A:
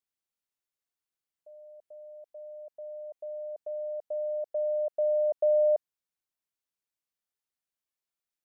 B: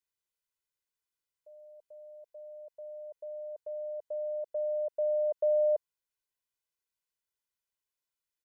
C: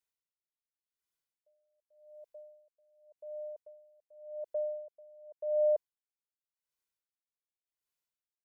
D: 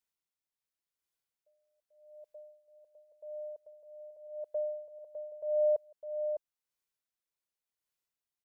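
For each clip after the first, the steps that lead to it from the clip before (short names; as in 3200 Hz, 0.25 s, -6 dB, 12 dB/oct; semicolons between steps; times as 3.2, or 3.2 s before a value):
bell 580 Hz -3.5 dB 0.94 oct; comb 2 ms; gain -2 dB
dB-linear tremolo 0.88 Hz, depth 27 dB
echo 0.605 s -7 dB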